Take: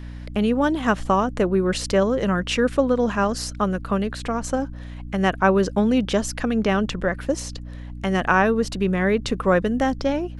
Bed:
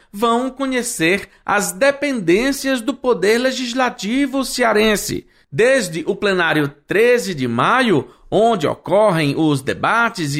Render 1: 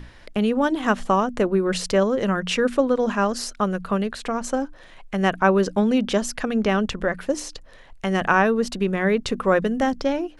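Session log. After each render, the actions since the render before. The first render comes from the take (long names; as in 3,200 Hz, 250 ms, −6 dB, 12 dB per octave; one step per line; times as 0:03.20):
mains-hum notches 60/120/180/240/300 Hz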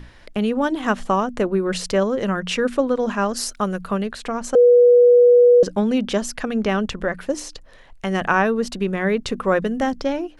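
0:03.36–0:03.92: high-shelf EQ 6,900 Hz → 10,000 Hz +10 dB
0:04.55–0:05.63: beep over 486 Hz −8 dBFS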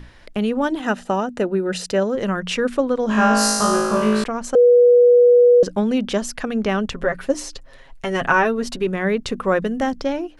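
0:00.80–0:02.15: notch comb filter 1,100 Hz
0:03.07–0:04.24: flutter between parallel walls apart 3.2 metres, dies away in 1.4 s
0:06.94–0:08.87: comb filter 7.4 ms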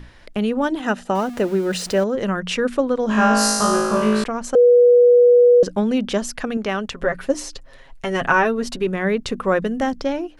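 0:01.15–0:02.04: converter with a step at zero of −32 dBFS
0:06.57–0:07.02: low-shelf EQ 340 Hz −7.5 dB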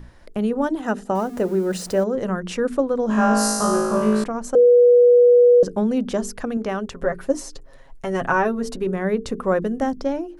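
parametric band 2,900 Hz −10 dB 1.9 octaves
mains-hum notches 50/100/150/200/250/300/350/400/450 Hz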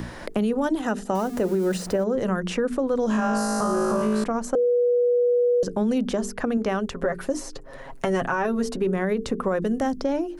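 brickwall limiter −16 dBFS, peak gain reduction 8.5 dB
multiband upward and downward compressor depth 70%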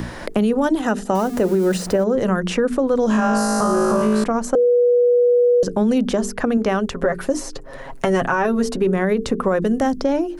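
level +5.5 dB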